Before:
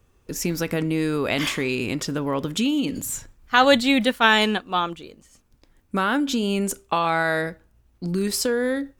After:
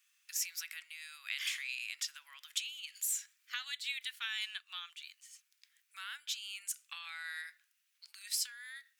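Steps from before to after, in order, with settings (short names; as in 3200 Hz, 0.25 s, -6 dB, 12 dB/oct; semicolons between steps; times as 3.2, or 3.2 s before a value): compressor 6:1, threshold -31 dBFS, peak gain reduction 18.5 dB; inverse Chebyshev high-pass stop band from 420 Hz, stop band 70 dB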